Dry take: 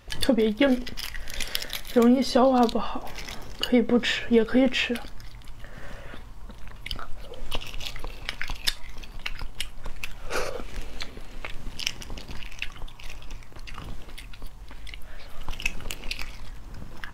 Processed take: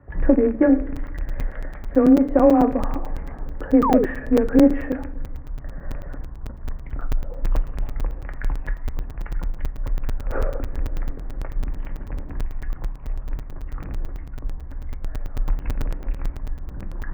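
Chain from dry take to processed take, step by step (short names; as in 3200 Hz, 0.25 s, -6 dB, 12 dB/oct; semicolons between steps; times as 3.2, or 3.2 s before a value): rattling part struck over -34 dBFS, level -18 dBFS; narrowing echo 83 ms, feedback 73%, band-pass 350 Hz, level -18.5 dB; reverse; upward compressor, threshold -33 dBFS; reverse; frequency shift +19 Hz; elliptic low-pass 1800 Hz, stop band 70 dB; tilt shelf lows +5.5 dB, about 900 Hz; on a send at -8 dB: reverb RT60 0.85 s, pre-delay 3 ms; on the sum: painted sound fall, 3.82–4.06, 350–1300 Hz -20 dBFS; crackling interface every 0.11 s, samples 256, zero, from 0.96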